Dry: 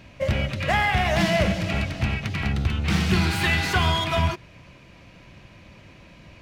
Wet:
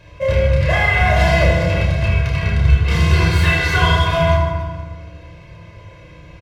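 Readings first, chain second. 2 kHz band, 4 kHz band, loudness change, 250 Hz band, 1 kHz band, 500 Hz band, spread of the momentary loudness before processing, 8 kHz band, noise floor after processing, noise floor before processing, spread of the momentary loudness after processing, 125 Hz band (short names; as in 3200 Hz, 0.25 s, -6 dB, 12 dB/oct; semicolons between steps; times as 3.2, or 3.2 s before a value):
+7.0 dB, +3.0 dB, +7.5 dB, +2.5 dB, +5.5 dB, +9.0 dB, 6 LU, +2.0 dB, -41 dBFS, -49 dBFS, 8 LU, +9.5 dB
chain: rattling part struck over -29 dBFS, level -33 dBFS; high shelf 6000 Hz -4.5 dB; comb 1.9 ms, depth 96%; on a send: reverse bouncing-ball echo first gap 30 ms, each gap 1.6×, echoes 5; on the sum: FDN reverb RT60 1.6 s, low-frequency decay 1.5×, high-frequency decay 0.35×, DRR -1 dB; gain -2 dB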